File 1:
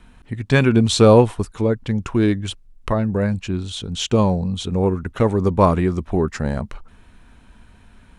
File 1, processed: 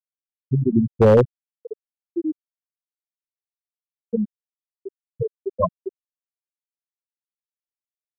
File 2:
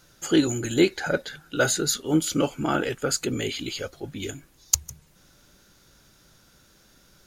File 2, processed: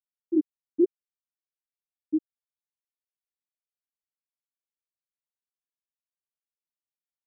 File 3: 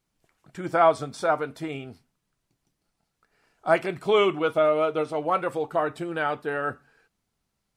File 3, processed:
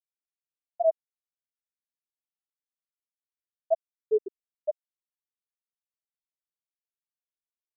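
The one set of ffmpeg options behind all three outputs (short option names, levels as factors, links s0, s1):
-af "afftfilt=real='re*gte(hypot(re,im),1.41)':imag='im*gte(hypot(re,im),1.41)':win_size=1024:overlap=0.75,aeval=exprs='0.473*(abs(mod(val(0)/0.473+3,4)-2)-1)':c=same"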